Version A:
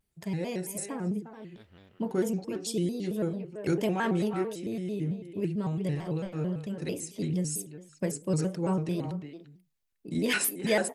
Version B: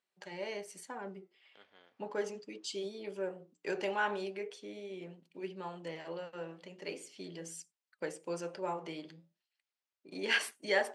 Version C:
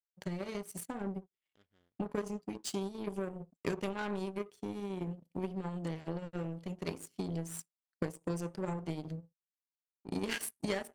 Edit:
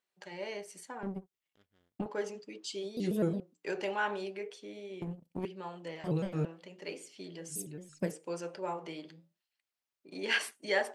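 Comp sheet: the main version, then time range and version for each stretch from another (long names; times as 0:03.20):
B
0:01.03–0:02.06: punch in from C
0:02.97–0:03.40: punch in from A
0:05.02–0:05.45: punch in from C
0:06.04–0:06.45: punch in from A
0:07.56–0:08.08: punch in from A, crossfade 0.16 s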